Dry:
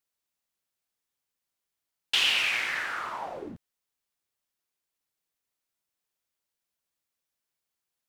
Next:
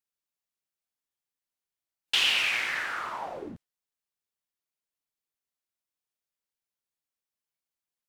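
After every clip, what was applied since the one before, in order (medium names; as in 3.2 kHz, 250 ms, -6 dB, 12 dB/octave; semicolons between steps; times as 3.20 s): spectral noise reduction 7 dB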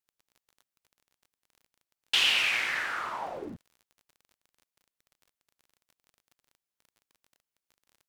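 crackle 31 per s -47 dBFS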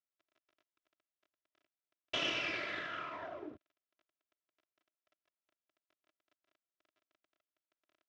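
comb filter that takes the minimum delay 3 ms; cabinet simulation 130–4600 Hz, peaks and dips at 220 Hz -5 dB, 320 Hz +5 dB, 610 Hz +8 dB, 860 Hz -6 dB, 1.3 kHz +4 dB, 4.4 kHz -7 dB; trim -8.5 dB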